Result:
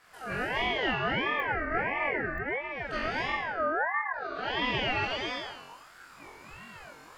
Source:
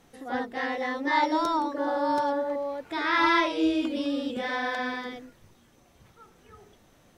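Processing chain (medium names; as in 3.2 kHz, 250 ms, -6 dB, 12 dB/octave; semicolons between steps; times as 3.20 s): low-pass that closes with the level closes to 400 Hz, closed at -21 dBFS; 3.04–4.14 s: inverse Chebyshev band-stop 2.3–6.2 kHz, stop band 70 dB; compression, threshold -32 dBFS, peak gain reduction 10 dB; 4.64–5.14 s: overdrive pedal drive 9 dB, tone 4.4 kHz, clips at -24.5 dBFS; flutter echo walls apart 3.8 m, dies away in 0.99 s; gated-style reverb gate 290 ms rising, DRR -2 dB; clicks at 1.40/2.38 s, -27 dBFS; ring modulator with a swept carrier 1.2 kHz, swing 25%, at 1.5 Hz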